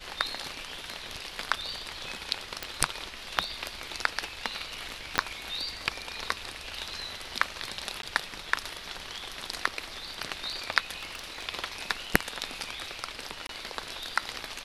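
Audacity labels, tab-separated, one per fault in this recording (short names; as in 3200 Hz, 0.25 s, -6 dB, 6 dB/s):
2.630000	2.630000	pop
5.180000	5.180000	pop -8 dBFS
8.020000	8.030000	gap 12 ms
10.950000	11.460000	clipped -31.5 dBFS
13.470000	13.490000	gap 22 ms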